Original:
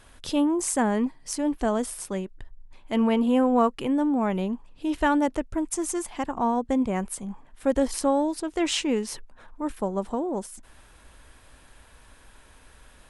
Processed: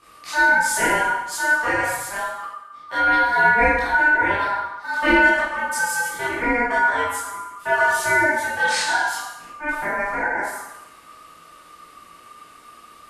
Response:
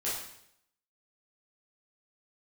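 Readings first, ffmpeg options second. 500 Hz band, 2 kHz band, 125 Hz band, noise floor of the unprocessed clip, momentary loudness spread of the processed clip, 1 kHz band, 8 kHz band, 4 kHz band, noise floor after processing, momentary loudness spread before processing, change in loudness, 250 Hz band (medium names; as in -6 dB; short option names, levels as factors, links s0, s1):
+1.0 dB, +22.5 dB, -1.0 dB, -54 dBFS, 13 LU, +9.5 dB, +4.0 dB, +5.0 dB, -47 dBFS, 11 LU, +6.5 dB, -6.5 dB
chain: -filter_complex "[0:a]aeval=exprs='val(0)*sin(2*PI*1200*n/s)':c=same[s0];[1:a]atrim=start_sample=2205,asetrate=33957,aresample=44100[s1];[s0][s1]afir=irnorm=-1:irlink=0"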